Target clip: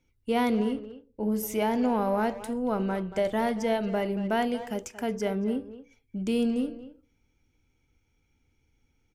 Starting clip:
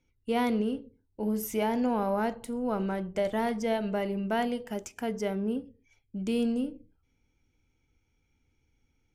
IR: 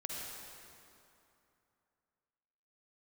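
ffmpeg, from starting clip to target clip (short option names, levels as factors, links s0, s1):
-filter_complex "[0:a]asettb=1/sr,asplit=3[s0][s1][s2];[s0]atrim=end=0.794[s3];[s1]atrim=start=0.79:end=1.32,asetpts=PTS-STARTPTS,afade=t=in:d=0.004:c=qsin,afade=t=out:st=0.526:d=0.004:c=qsin,highshelf=f=2600:g=-9.5[s4];[s2]atrim=start=1.316[s5];[s3][s4]acrossfade=d=0.004:c1=hsin:c2=qsin[s6];[s6][s5]acrossfade=d=0.004:c1=qsin:c2=hsin,asplit=2[s7][s8];[s8]adelay=230,highpass=300,lowpass=3400,asoftclip=type=hard:threshold=0.0501,volume=0.251[s9];[s7][s9]amix=inputs=2:normalize=0,volume=1.26"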